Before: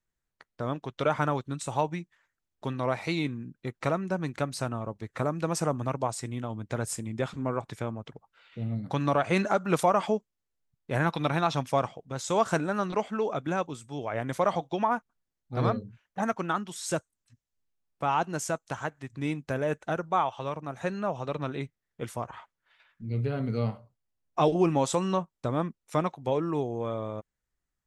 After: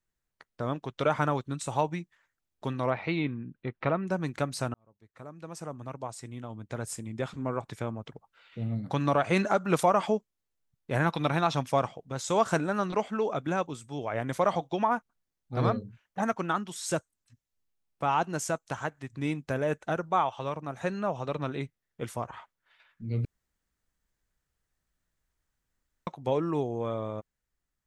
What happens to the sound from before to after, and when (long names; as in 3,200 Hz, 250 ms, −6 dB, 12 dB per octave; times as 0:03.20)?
0:02.90–0:04.07: low-pass filter 3,400 Hz 24 dB per octave
0:04.74–0:08.06: fade in
0:23.25–0:26.07: fill with room tone